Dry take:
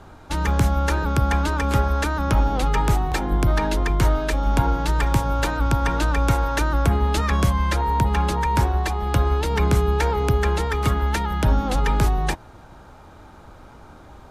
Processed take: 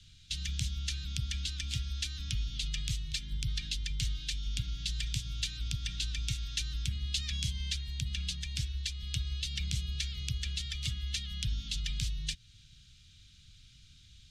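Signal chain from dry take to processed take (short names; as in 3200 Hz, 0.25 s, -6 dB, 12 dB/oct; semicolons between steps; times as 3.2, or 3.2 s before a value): Chebyshev band-stop 140–3200 Hz, order 3; three-band isolator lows -15 dB, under 340 Hz, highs -23 dB, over 7500 Hz; in parallel at -1 dB: compressor, threshold -43 dBFS, peak gain reduction 14.5 dB; on the sum: gain -1.5 dB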